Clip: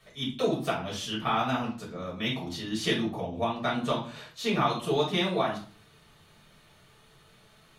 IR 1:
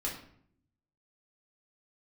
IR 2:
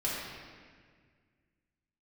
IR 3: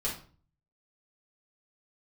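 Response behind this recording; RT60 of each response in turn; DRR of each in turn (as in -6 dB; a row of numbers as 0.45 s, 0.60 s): 3; 0.65 s, 1.8 s, 0.40 s; -3.5 dB, -8.0 dB, -6.0 dB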